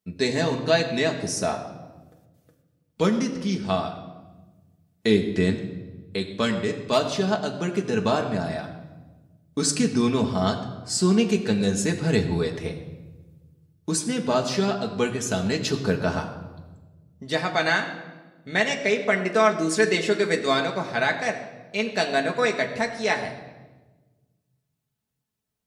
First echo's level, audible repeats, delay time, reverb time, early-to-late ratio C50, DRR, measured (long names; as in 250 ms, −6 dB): no echo audible, no echo audible, no echo audible, 1.2 s, 9.5 dB, 1.5 dB